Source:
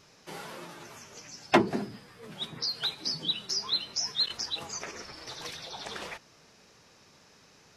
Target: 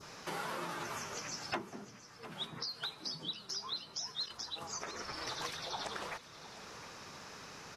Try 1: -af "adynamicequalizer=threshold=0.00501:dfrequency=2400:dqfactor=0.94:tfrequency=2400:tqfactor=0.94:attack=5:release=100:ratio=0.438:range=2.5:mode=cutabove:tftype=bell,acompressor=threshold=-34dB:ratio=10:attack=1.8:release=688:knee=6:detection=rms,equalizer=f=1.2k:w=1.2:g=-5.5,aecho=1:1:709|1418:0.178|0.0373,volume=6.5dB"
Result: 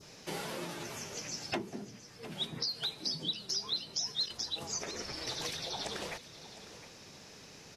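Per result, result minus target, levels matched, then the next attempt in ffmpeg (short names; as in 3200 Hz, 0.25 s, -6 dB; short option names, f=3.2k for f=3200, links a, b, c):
1000 Hz band -8.0 dB; compressor: peak gain reduction -6.5 dB
-af "adynamicequalizer=threshold=0.00501:dfrequency=2400:dqfactor=0.94:tfrequency=2400:tqfactor=0.94:attack=5:release=100:ratio=0.438:range=2.5:mode=cutabove:tftype=bell,acompressor=threshold=-34dB:ratio=10:attack=1.8:release=688:knee=6:detection=rms,equalizer=f=1.2k:w=1.2:g=6,aecho=1:1:709|1418:0.178|0.0373,volume=6.5dB"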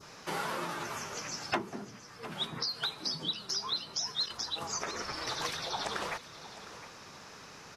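compressor: peak gain reduction -6.5 dB
-af "adynamicequalizer=threshold=0.00501:dfrequency=2400:dqfactor=0.94:tfrequency=2400:tqfactor=0.94:attack=5:release=100:ratio=0.438:range=2.5:mode=cutabove:tftype=bell,acompressor=threshold=-41dB:ratio=10:attack=1.8:release=688:knee=6:detection=rms,equalizer=f=1.2k:w=1.2:g=6,aecho=1:1:709|1418:0.178|0.0373,volume=6.5dB"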